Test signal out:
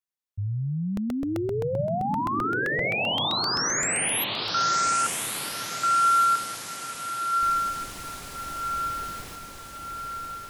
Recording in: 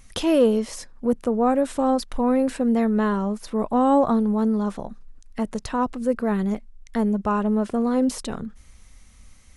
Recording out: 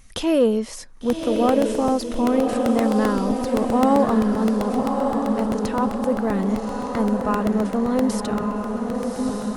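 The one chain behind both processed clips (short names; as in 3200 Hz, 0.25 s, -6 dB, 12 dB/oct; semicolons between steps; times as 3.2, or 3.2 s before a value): diffused feedback echo 1.151 s, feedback 55%, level -3.5 dB; crackling interface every 0.13 s, samples 64, repeat, from 0.97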